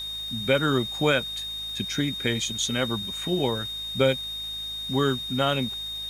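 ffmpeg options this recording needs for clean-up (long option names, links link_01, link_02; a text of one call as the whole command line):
ffmpeg -i in.wav -af "adeclick=threshold=4,bandreject=frequency=53.2:width_type=h:width=4,bandreject=frequency=106.4:width_type=h:width=4,bandreject=frequency=159.6:width_type=h:width=4,bandreject=frequency=212.8:width_type=h:width=4,bandreject=frequency=266:width_type=h:width=4,bandreject=frequency=3700:width=30,afwtdn=0.0035" out.wav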